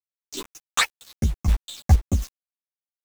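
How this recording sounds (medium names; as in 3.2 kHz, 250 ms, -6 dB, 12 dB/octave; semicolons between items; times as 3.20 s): phasing stages 8, 2.5 Hz, lowest notch 390–1700 Hz; a quantiser's noise floor 6-bit, dither none; chopped level 2.7 Hz, depth 65%, duty 25%; a shimmering, thickened sound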